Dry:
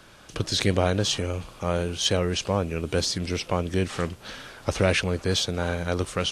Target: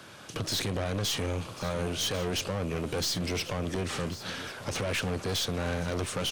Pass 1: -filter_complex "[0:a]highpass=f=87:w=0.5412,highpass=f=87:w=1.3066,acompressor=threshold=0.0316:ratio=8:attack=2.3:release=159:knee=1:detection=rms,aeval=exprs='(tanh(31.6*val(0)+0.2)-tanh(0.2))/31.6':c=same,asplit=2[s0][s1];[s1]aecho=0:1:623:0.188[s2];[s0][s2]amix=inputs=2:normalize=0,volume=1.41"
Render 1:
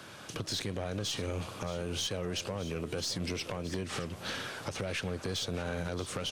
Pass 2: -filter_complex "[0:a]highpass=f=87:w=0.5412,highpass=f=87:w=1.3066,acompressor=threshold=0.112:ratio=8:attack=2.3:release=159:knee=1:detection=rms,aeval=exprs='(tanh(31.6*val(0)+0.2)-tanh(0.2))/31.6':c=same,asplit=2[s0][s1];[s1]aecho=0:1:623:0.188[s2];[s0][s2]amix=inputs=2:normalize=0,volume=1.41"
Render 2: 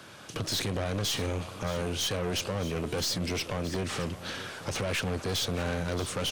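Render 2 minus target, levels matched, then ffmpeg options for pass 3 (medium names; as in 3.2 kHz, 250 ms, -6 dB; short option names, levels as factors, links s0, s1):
echo 470 ms early
-filter_complex "[0:a]highpass=f=87:w=0.5412,highpass=f=87:w=1.3066,acompressor=threshold=0.112:ratio=8:attack=2.3:release=159:knee=1:detection=rms,aeval=exprs='(tanh(31.6*val(0)+0.2)-tanh(0.2))/31.6':c=same,asplit=2[s0][s1];[s1]aecho=0:1:1093:0.188[s2];[s0][s2]amix=inputs=2:normalize=0,volume=1.41"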